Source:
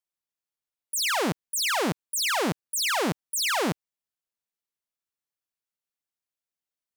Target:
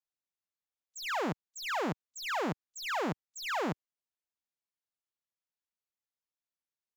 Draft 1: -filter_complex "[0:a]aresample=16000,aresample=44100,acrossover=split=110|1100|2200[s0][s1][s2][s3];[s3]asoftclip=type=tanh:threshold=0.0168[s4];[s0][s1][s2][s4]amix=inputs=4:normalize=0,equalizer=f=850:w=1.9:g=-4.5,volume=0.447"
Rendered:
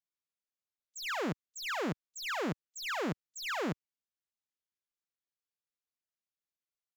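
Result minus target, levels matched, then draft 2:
1 kHz band -3.0 dB
-filter_complex "[0:a]aresample=16000,aresample=44100,acrossover=split=110|1100|2200[s0][s1][s2][s3];[s3]asoftclip=type=tanh:threshold=0.0168[s4];[s0][s1][s2][s4]amix=inputs=4:normalize=0,equalizer=f=850:w=1.9:g=2,volume=0.447"

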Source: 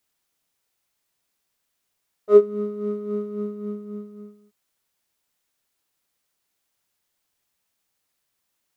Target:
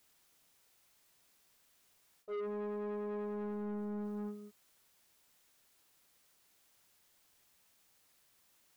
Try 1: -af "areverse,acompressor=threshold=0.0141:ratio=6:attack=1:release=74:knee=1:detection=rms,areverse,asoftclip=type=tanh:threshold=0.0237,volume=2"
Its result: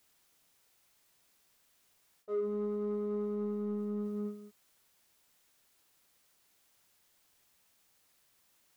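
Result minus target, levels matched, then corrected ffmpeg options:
saturation: distortion -13 dB
-af "areverse,acompressor=threshold=0.0141:ratio=6:attack=1:release=74:knee=1:detection=rms,areverse,asoftclip=type=tanh:threshold=0.0075,volume=2"

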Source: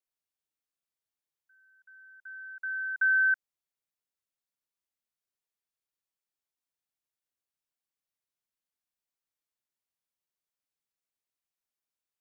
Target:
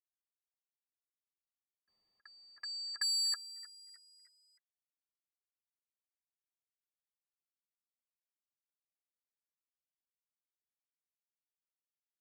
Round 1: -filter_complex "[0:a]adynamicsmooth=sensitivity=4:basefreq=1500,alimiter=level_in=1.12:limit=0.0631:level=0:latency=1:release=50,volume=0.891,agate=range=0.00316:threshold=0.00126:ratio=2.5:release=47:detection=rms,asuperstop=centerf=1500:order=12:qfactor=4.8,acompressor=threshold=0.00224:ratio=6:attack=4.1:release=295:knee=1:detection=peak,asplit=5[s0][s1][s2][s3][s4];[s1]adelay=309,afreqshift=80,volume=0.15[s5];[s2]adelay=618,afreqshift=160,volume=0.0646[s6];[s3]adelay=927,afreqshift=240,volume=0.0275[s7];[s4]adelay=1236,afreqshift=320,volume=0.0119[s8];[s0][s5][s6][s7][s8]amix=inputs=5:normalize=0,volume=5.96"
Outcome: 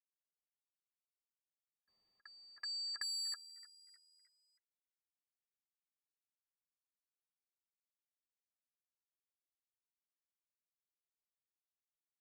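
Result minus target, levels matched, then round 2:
compression: peak gain reduction +8.5 dB
-filter_complex "[0:a]adynamicsmooth=sensitivity=4:basefreq=1500,alimiter=level_in=1.12:limit=0.0631:level=0:latency=1:release=50,volume=0.891,agate=range=0.00316:threshold=0.00126:ratio=2.5:release=47:detection=rms,asuperstop=centerf=1500:order=12:qfactor=4.8,asplit=5[s0][s1][s2][s3][s4];[s1]adelay=309,afreqshift=80,volume=0.15[s5];[s2]adelay=618,afreqshift=160,volume=0.0646[s6];[s3]adelay=927,afreqshift=240,volume=0.0275[s7];[s4]adelay=1236,afreqshift=320,volume=0.0119[s8];[s0][s5][s6][s7][s8]amix=inputs=5:normalize=0,volume=5.96"

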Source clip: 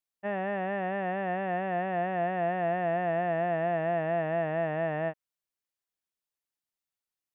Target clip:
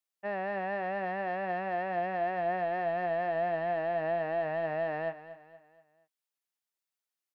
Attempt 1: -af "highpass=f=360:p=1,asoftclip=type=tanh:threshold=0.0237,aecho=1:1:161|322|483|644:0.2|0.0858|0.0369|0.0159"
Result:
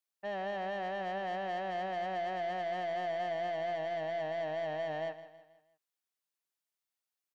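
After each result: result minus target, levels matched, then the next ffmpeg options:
saturation: distortion +12 dB; echo 75 ms early
-af "highpass=f=360:p=1,asoftclip=type=tanh:threshold=0.0794,aecho=1:1:161|322|483|644:0.2|0.0858|0.0369|0.0159"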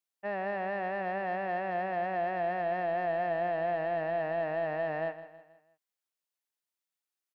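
echo 75 ms early
-af "highpass=f=360:p=1,asoftclip=type=tanh:threshold=0.0794,aecho=1:1:236|472|708|944:0.2|0.0858|0.0369|0.0159"

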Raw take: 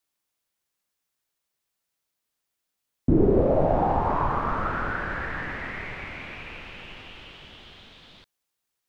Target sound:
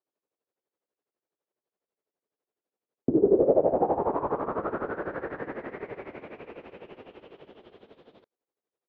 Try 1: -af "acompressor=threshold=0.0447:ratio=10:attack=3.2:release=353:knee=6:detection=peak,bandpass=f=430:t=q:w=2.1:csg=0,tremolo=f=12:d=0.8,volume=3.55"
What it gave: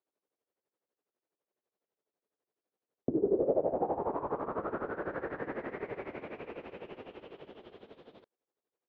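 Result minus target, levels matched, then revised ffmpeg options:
compression: peak gain reduction +8 dB
-af "acompressor=threshold=0.126:ratio=10:attack=3.2:release=353:knee=6:detection=peak,bandpass=f=430:t=q:w=2.1:csg=0,tremolo=f=12:d=0.8,volume=3.55"

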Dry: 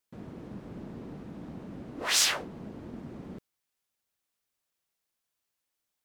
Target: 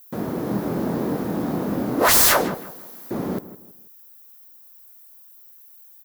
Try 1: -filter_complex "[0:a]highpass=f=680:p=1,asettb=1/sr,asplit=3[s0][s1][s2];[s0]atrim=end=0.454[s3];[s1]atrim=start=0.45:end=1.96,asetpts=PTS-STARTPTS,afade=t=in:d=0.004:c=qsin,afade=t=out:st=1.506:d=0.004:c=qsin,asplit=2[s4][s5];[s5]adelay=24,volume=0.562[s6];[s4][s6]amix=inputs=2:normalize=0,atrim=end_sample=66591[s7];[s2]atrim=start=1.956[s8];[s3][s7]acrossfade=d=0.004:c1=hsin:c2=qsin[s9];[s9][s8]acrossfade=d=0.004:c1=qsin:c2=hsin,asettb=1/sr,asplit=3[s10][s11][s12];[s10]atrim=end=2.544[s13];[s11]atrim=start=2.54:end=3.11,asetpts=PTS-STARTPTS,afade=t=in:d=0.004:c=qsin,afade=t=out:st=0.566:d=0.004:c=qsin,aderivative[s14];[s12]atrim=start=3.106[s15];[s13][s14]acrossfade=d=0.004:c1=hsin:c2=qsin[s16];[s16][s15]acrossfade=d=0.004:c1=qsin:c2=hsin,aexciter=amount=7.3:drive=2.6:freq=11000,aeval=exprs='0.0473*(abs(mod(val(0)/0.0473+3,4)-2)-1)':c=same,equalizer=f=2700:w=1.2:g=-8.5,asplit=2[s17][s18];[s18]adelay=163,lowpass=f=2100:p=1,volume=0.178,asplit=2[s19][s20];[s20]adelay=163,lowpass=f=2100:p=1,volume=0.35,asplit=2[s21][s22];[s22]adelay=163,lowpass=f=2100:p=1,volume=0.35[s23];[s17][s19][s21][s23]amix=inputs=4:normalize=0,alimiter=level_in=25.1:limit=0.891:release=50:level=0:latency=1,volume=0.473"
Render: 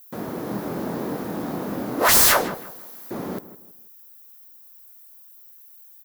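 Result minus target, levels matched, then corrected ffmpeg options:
250 Hz band -4.5 dB
-filter_complex "[0:a]highpass=f=330:p=1,asettb=1/sr,asplit=3[s0][s1][s2];[s0]atrim=end=0.454[s3];[s1]atrim=start=0.45:end=1.96,asetpts=PTS-STARTPTS,afade=t=in:d=0.004:c=qsin,afade=t=out:st=1.506:d=0.004:c=qsin,asplit=2[s4][s5];[s5]adelay=24,volume=0.562[s6];[s4][s6]amix=inputs=2:normalize=0,atrim=end_sample=66591[s7];[s2]atrim=start=1.956[s8];[s3][s7]acrossfade=d=0.004:c1=hsin:c2=qsin[s9];[s9][s8]acrossfade=d=0.004:c1=qsin:c2=hsin,asettb=1/sr,asplit=3[s10][s11][s12];[s10]atrim=end=2.544[s13];[s11]atrim=start=2.54:end=3.11,asetpts=PTS-STARTPTS,afade=t=in:d=0.004:c=qsin,afade=t=out:st=0.566:d=0.004:c=qsin,aderivative[s14];[s12]atrim=start=3.106[s15];[s13][s14]acrossfade=d=0.004:c1=hsin:c2=qsin[s16];[s16][s15]acrossfade=d=0.004:c1=qsin:c2=hsin,aexciter=amount=7.3:drive=2.6:freq=11000,aeval=exprs='0.0473*(abs(mod(val(0)/0.0473+3,4)-2)-1)':c=same,equalizer=f=2700:w=1.2:g=-8.5,asplit=2[s17][s18];[s18]adelay=163,lowpass=f=2100:p=1,volume=0.178,asplit=2[s19][s20];[s20]adelay=163,lowpass=f=2100:p=1,volume=0.35,asplit=2[s21][s22];[s22]adelay=163,lowpass=f=2100:p=1,volume=0.35[s23];[s17][s19][s21][s23]amix=inputs=4:normalize=0,alimiter=level_in=25.1:limit=0.891:release=50:level=0:latency=1,volume=0.473"

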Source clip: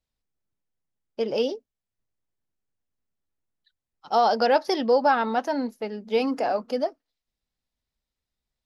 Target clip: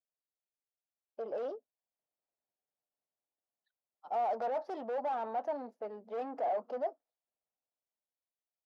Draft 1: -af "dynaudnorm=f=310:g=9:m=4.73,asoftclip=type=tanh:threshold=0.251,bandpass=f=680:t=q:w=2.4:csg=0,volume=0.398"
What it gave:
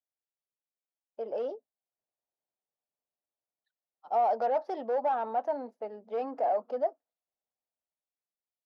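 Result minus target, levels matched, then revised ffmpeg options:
saturation: distortion -6 dB
-af "dynaudnorm=f=310:g=9:m=4.73,asoftclip=type=tanh:threshold=0.1,bandpass=f=680:t=q:w=2.4:csg=0,volume=0.398"

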